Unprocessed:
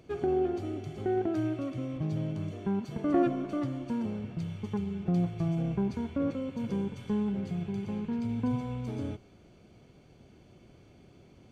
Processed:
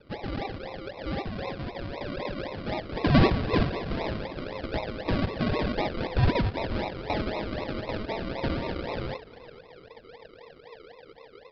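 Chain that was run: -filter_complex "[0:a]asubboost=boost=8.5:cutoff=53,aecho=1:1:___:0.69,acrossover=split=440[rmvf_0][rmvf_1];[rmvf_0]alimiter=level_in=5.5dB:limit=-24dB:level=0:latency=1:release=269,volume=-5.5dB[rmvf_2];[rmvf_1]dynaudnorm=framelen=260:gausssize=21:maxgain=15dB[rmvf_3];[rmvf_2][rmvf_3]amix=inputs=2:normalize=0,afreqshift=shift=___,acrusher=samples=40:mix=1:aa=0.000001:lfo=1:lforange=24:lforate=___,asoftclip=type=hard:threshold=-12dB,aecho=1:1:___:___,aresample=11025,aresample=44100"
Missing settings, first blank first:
1.6, 430, 3.9, 429, 0.0668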